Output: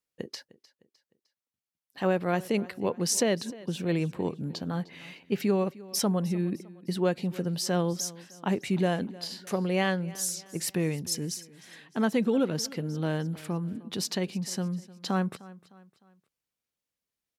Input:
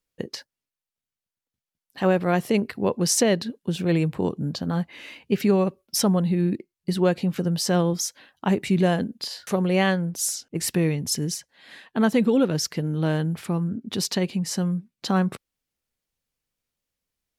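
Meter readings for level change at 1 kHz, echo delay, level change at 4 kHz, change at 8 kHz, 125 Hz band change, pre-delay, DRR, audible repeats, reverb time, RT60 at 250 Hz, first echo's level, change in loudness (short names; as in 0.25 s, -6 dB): -5.0 dB, 0.305 s, -5.0 dB, -5.0 dB, -6.5 dB, none, none, 3, none, none, -20.0 dB, -5.5 dB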